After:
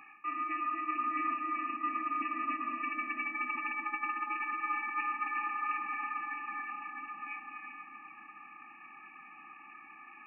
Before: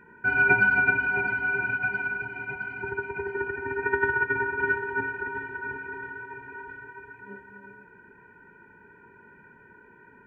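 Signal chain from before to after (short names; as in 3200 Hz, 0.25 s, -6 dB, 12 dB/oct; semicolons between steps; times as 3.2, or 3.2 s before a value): reverse; compressor 16:1, threshold -32 dBFS, peak gain reduction 17.5 dB; reverse; thin delay 0.241 s, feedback 72%, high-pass 1600 Hz, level -4.5 dB; inverted band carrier 2700 Hz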